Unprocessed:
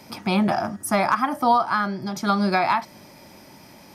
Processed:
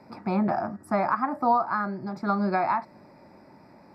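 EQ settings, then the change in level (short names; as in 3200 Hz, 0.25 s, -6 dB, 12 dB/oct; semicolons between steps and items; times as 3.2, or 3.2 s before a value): running mean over 14 samples; low shelf 120 Hz -6.5 dB; -2.5 dB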